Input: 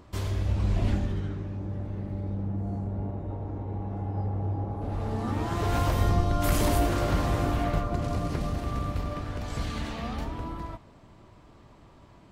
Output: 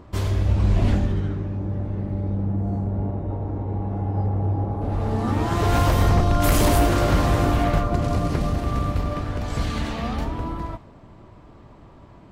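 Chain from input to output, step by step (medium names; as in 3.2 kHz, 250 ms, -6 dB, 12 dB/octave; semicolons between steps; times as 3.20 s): wavefolder -17.5 dBFS; tape noise reduction on one side only decoder only; trim +7 dB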